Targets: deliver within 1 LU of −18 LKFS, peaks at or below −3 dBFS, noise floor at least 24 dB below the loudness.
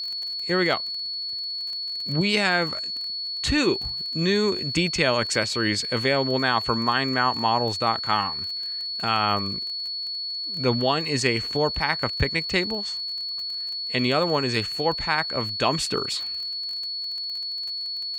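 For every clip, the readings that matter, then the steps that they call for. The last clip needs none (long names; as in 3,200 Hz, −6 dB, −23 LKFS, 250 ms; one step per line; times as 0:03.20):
crackle rate 24 per second; interfering tone 4,400 Hz; level of the tone −28 dBFS; integrated loudness −24.0 LKFS; sample peak −7.0 dBFS; target loudness −18.0 LKFS
→ click removal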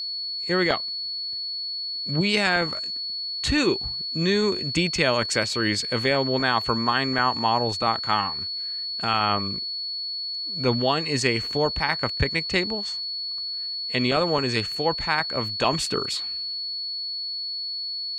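crackle rate 0.055 per second; interfering tone 4,400 Hz; level of the tone −28 dBFS
→ notch filter 4,400 Hz, Q 30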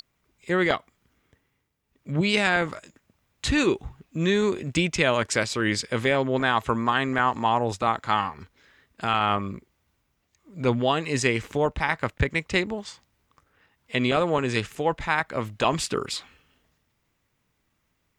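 interfering tone none found; integrated loudness −25.0 LKFS; sample peak −5.0 dBFS; target loudness −18.0 LKFS
→ level +7 dB
brickwall limiter −3 dBFS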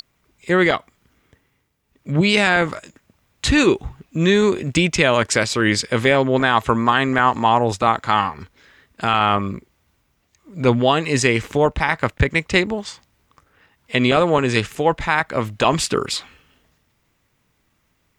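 integrated loudness −18.5 LKFS; sample peak −3.0 dBFS; background noise floor −67 dBFS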